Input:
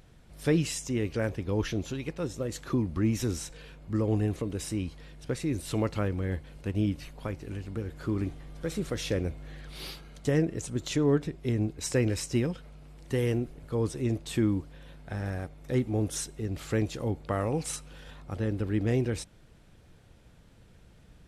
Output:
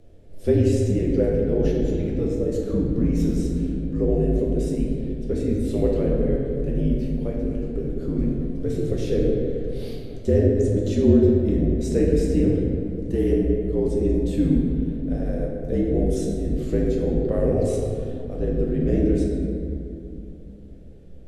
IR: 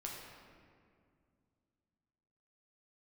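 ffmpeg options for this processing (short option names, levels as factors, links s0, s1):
-filter_complex "[0:a]lowshelf=f=800:t=q:w=3:g=9.5,afreqshift=-55[s0];[1:a]atrim=start_sample=2205,asetrate=36162,aresample=44100[s1];[s0][s1]afir=irnorm=-1:irlink=0,volume=0.708"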